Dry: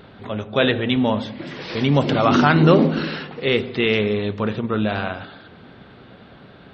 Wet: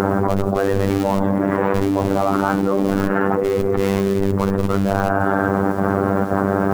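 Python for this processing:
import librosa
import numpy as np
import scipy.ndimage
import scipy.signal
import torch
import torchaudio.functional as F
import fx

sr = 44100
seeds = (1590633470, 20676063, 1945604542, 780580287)

p1 = scipy.signal.sosfilt(scipy.signal.butter(4, 1300.0, 'lowpass', fs=sr, output='sos'), x)
p2 = fx.low_shelf(p1, sr, hz=120.0, db=-10.5)
p3 = fx.schmitt(p2, sr, flips_db=-21.5)
p4 = p2 + F.gain(torch.from_numpy(p3), -6.5).numpy()
p5 = fx.chopper(p4, sr, hz=1.9, depth_pct=65, duty_pct=85)
p6 = fx.robotise(p5, sr, hz=98.1)
p7 = fx.quant_companded(p6, sr, bits=8)
p8 = fx.env_flatten(p7, sr, amount_pct=100)
y = F.gain(torch.from_numpy(p8), -5.0).numpy()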